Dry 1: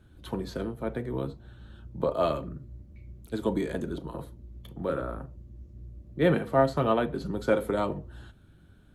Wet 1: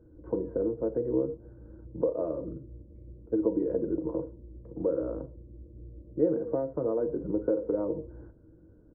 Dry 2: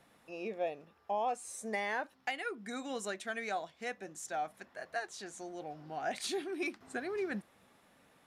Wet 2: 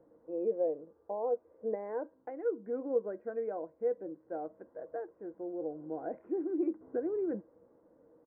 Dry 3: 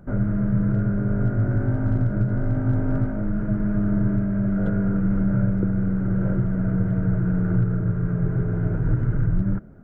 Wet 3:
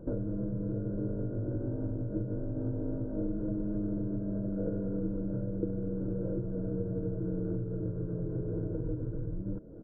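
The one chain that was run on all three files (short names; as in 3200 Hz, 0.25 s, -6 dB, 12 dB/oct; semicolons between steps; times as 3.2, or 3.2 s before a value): comb 2 ms, depth 33%; compressor 6:1, threshold -30 dBFS; Gaussian blur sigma 7.6 samples; resonator 320 Hz, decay 0.43 s, harmonics all, mix 40%; small resonant body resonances 320/470 Hz, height 17 dB, ringing for 50 ms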